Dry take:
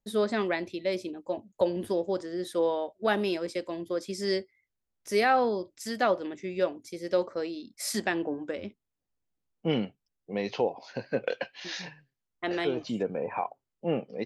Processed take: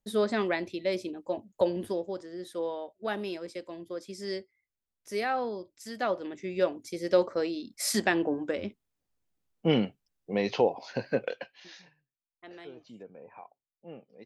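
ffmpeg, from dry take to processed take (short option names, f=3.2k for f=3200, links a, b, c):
-af "volume=9.5dB,afade=t=out:st=1.68:d=0.46:silence=0.473151,afade=t=in:st=5.91:d=1.09:silence=0.334965,afade=t=out:st=11.08:d=0.25:silence=0.375837,afade=t=out:st=11.33:d=0.51:silence=0.266073"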